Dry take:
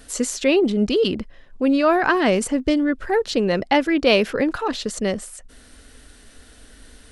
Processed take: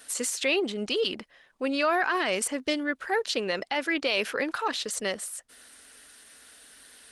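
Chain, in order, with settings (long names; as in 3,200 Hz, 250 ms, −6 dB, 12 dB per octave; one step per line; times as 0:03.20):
high-pass filter 1,400 Hz 6 dB per octave
brickwall limiter −17.5 dBFS, peak gain reduction 10.5 dB
level +2 dB
Opus 24 kbit/s 48,000 Hz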